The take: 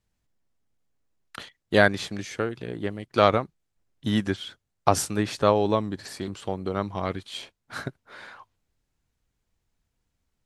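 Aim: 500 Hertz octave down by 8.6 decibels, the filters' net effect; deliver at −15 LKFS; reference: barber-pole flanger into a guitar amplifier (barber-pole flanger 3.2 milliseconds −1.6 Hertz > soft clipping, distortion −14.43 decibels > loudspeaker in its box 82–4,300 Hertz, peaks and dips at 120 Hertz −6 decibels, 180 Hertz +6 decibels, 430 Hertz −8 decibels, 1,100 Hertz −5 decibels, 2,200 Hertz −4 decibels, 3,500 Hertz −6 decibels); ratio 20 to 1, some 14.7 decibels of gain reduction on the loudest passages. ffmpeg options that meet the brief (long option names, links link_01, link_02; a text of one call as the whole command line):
ffmpeg -i in.wav -filter_complex "[0:a]equalizer=frequency=500:width_type=o:gain=-8,acompressor=threshold=-29dB:ratio=20,asplit=2[link_01][link_02];[link_02]adelay=3.2,afreqshift=-1.6[link_03];[link_01][link_03]amix=inputs=2:normalize=1,asoftclip=threshold=-31dB,highpass=82,equalizer=frequency=120:width_type=q:width=4:gain=-6,equalizer=frequency=180:width_type=q:width=4:gain=6,equalizer=frequency=430:width_type=q:width=4:gain=-8,equalizer=frequency=1100:width_type=q:width=4:gain=-5,equalizer=frequency=2200:width_type=q:width=4:gain=-4,equalizer=frequency=3500:width_type=q:width=4:gain=-6,lowpass=frequency=4300:width=0.5412,lowpass=frequency=4300:width=1.3066,volume=28dB" out.wav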